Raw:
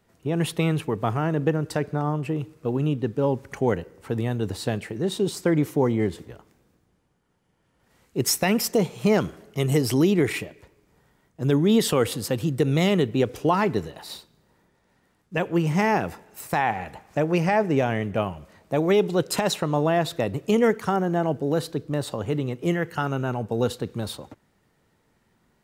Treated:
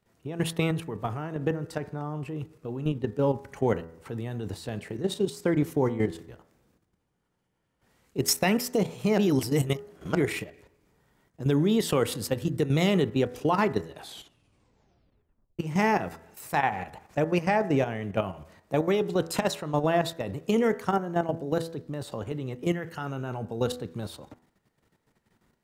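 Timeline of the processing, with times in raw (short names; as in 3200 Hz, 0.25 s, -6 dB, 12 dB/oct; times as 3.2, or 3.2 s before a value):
9.18–10.15 reverse
13.89 tape stop 1.70 s
whole clip: level quantiser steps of 11 dB; de-hum 82.42 Hz, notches 24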